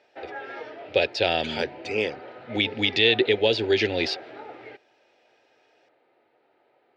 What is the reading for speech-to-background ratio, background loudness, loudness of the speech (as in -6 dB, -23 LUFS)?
17.0 dB, -40.5 LUFS, -23.5 LUFS